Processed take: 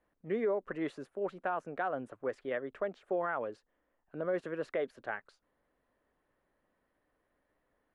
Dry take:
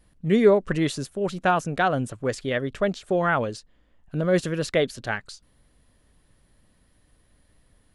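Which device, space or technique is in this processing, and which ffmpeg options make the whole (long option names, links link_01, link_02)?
DJ mixer with the lows and highs turned down: -filter_complex "[0:a]acrossover=split=300 2100:gain=0.112 1 0.0708[link_01][link_02][link_03];[link_01][link_02][link_03]amix=inputs=3:normalize=0,alimiter=limit=-17.5dB:level=0:latency=1:release=140,volume=-6.5dB"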